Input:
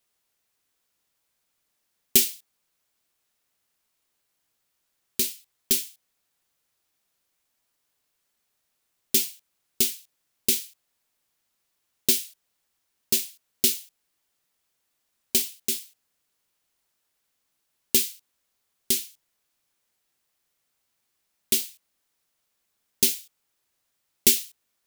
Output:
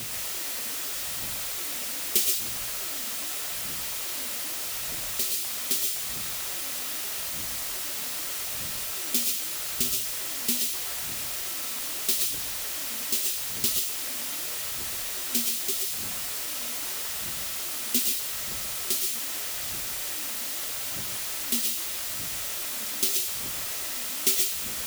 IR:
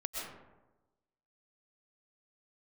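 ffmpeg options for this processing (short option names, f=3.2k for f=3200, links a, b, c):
-filter_complex "[0:a]aeval=exprs='val(0)+0.5*0.0891*sgn(val(0))':c=same,highpass=58,lowshelf=f=390:g=-3,acrossover=split=380|1800|6000[a][b][c][d];[a]aphaser=in_gain=1:out_gain=1:delay=4.5:decay=0.78:speed=0.81:type=triangular[e];[b]aeval=exprs='val(0)*gte(abs(val(0)),0.01)':c=same[f];[e][f][c][d]amix=inputs=4:normalize=0[g];[1:a]atrim=start_sample=2205,atrim=end_sample=6174[h];[g][h]afir=irnorm=-1:irlink=0,volume=-4.5dB"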